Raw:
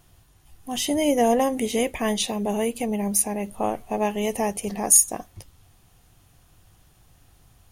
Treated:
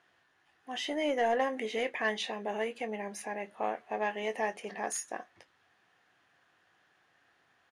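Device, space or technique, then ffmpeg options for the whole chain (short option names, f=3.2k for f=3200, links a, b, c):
intercom: -filter_complex "[0:a]highpass=370,lowpass=3.7k,equalizer=f=1.7k:t=o:w=0.55:g=12,asoftclip=type=tanh:threshold=-12.5dB,asplit=2[a][b];[b]adelay=23,volume=-11dB[c];[a][c]amix=inputs=2:normalize=0,volume=-7dB"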